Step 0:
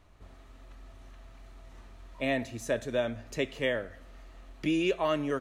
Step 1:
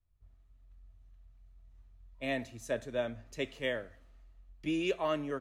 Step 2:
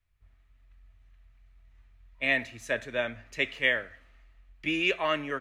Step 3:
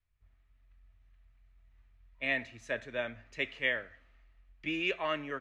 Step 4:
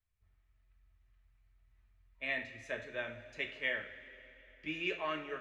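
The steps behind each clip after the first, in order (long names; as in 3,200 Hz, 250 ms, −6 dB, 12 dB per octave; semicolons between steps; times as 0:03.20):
multiband upward and downward expander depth 70%; level −5.5 dB
parametric band 2,100 Hz +14.5 dB 1.6 octaves
high-frequency loss of the air 63 metres; level −5 dB
coupled-rooms reverb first 0.36 s, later 3.9 s, from −18 dB, DRR 3.5 dB; level −5.5 dB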